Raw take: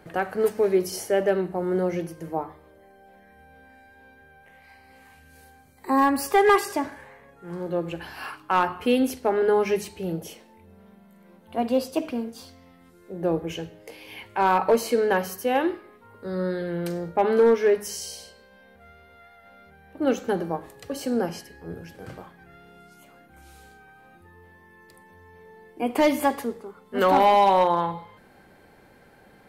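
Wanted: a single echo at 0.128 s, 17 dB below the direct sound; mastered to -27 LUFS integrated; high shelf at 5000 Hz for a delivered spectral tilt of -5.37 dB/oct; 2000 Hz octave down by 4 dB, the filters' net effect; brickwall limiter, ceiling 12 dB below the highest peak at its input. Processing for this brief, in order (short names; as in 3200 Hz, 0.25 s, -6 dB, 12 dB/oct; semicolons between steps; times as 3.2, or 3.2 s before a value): bell 2000 Hz -4.5 dB; high shelf 5000 Hz -5.5 dB; limiter -23 dBFS; echo 0.128 s -17 dB; gain +6 dB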